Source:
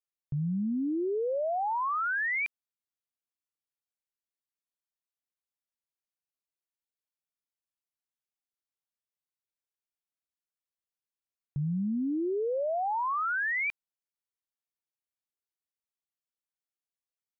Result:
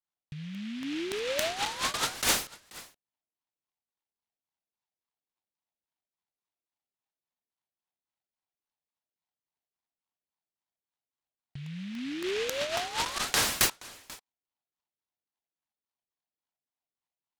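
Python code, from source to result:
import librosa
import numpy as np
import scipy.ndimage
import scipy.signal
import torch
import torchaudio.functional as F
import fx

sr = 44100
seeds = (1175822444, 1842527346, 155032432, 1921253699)

p1 = fx.wiener(x, sr, points=25)
p2 = fx.notch(p1, sr, hz=1200.0, q=11.0)
p3 = fx.filter_lfo_lowpass(p2, sr, shape='saw_down', hz=3.6, low_hz=440.0, high_hz=1600.0, q=3.6)
p4 = p3 + 0.63 * np.pad(p3, (int(1.0 * sr / 1000.0), 0))[:len(p3)]
p5 = fx.over_compress(p4, sr, threshold_db=-32.0, ratio=-1.0)
p6 = fx.tilt_eq(p5, sr, slope=2.5)
p7 = p6 + fx.echo_single(p6, sr, ms=488, db=-20.5, dry=0)
p8 = fx.vibrato(p7, sr, rate_hz=0.83, depth_cents=68.0)
p9 = fx.high_shelf(p8, sr, hz=2300.0, db=9.0)
y = fx.noise_mod_delay(p9, sr, seeds[0], noise_hz=2500.0, depth_ms=0.18)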